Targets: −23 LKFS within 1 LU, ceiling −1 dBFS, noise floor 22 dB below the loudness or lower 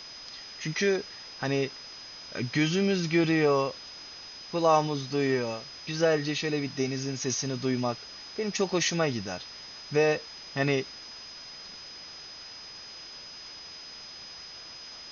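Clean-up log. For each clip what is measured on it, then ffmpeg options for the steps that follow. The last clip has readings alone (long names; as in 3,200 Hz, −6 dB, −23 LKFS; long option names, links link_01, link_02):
interfering tone 5,000 Hz; level of the tone −43 dBFS; background noise floor −45 dBFS; target noise floor −51 dBFS; integrated loudness −28.5 LKFS; sample peak −11.5 dBFS; target loudness −23.0 LKFS
→ -af "bandreject=frequency=5000:width=30"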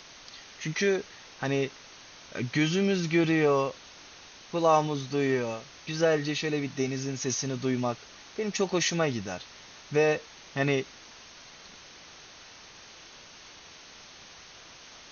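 interfering tone none found; background noise floor −50 dBFS; target noise floor −51 dBFS
→ -af "afftdn=noise_reduction=6:noise_floor=-50"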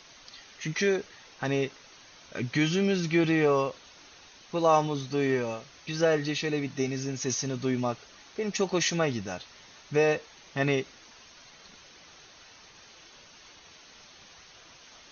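background noise floor −53 dBFS; integrated loudness −28.5 LKFS; sample peak −11.5 dBFS; target loudness −23.0 LKFS
→ -af "volume=5.5dB"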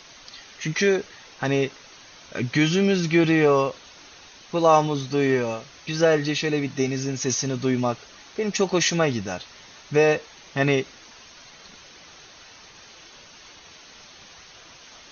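integrated loudness −23.0 LKFS; sample peak −6.0 dBFS; background noise floor −48 dBFS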